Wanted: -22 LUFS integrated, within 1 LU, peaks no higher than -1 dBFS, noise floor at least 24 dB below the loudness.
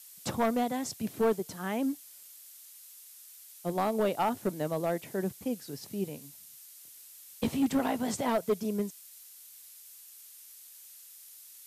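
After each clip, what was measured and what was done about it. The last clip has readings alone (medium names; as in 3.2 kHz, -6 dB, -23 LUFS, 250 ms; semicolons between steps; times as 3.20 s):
clipped samples 0.8%; clipping level -21.5 dBFS; noise floor -52 dBFS; noise floor target -56 dBFS; loudness -32.0 LUFS; peak level -21.5 dBFS; loudness target -22.0 LUFS
-> clip repair -21.5 dBFS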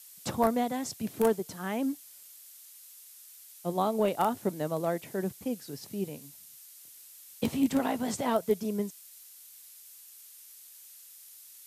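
clipped samples 0.0%; noise floor -52 dBFS; noise floor target -55 dBFS
-> noise reduction 6 dB, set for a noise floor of -52 dBFS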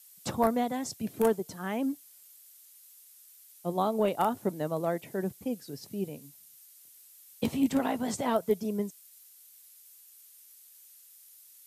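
noise floor -56 dBFS; loudness -31.0 LUFS; peak level -12.5 dBFS; loudness target -22.0 LUFS
-> trim +9 dB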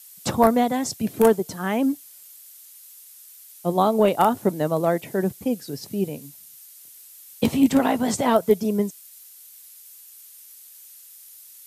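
loudness -22.0 LUFS; peak level -3.5 dBFS; noise floor -47 dBFS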